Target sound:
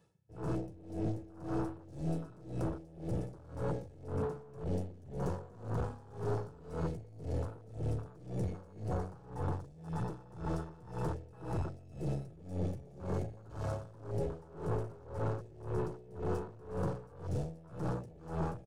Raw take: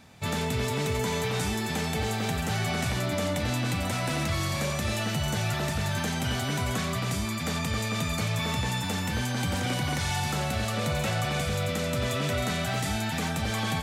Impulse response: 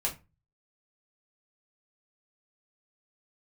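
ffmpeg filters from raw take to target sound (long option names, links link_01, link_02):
-filter_complex "[0:a]highpass=190,asetrate=32667,aresample=44100,equalizer=frequency=2400:width=0.34:gain=-15,asplit=2[link_01][link_02];[1:a]atrim=start_sample=2205[link_03];[link_02][link_03]afir=irnorm=-1:irlink=0,volume=-13dB[link_04];[link_01][link_04]amix=inputs=2:normalize=0,acontrast=76,aecho=1:1:2.3:0.47,aeval=exprs='(tanh(35.5*val(0)+0.45)-tanh(0.45))/35.5':channel_layout=same,afwtdn=0.0178,aeval=exprs='val(0)*pow(10,-22*(0.5-0.5*cos(2*PI*1.9*n/s))/20)':channel_layout=same,volume=1dB"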